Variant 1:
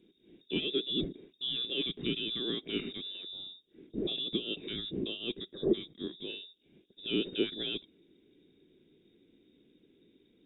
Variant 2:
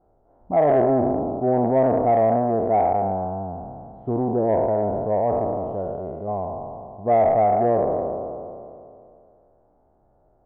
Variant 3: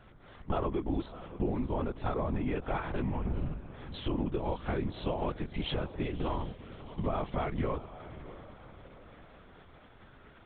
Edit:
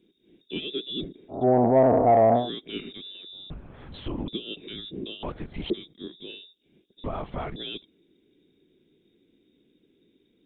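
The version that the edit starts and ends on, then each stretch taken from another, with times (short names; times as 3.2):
1
1.36–2.42 from 2, crossfade 0.16 s
3.5–4.28 from 3
5.23–5.7 from 3
7.04–7.56 from 3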